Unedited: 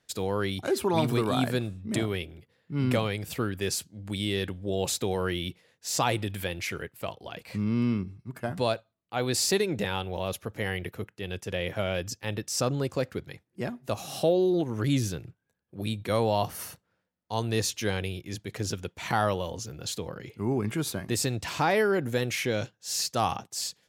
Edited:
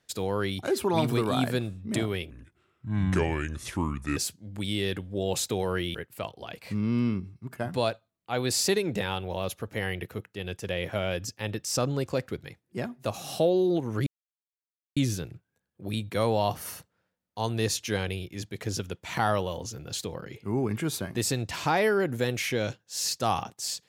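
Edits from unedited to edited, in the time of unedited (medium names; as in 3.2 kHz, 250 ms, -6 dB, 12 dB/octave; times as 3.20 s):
2.30–3.68 s: speed 74%
5.46–6.78 s: delete
14.90 s: insert silence 0.90 s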